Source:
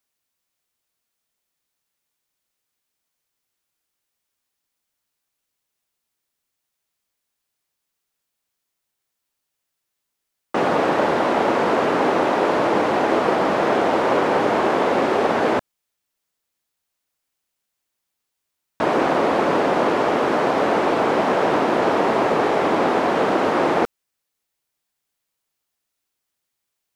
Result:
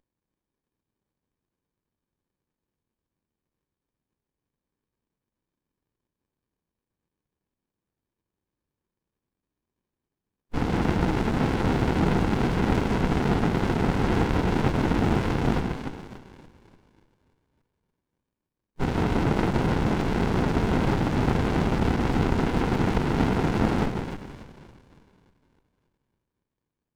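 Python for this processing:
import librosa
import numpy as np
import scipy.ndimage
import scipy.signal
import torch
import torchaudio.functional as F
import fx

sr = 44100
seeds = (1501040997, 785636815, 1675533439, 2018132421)

y = fx.echo_split(x, sr, split_hz=1000.0, low_ms=156, high_ms=289, feedback_pct=52, wet_db=-5.5)
y = fx.pitch_keep_formants(y, sr, semitones=-9.0)
y = fx.running_max(y, sr, window=65)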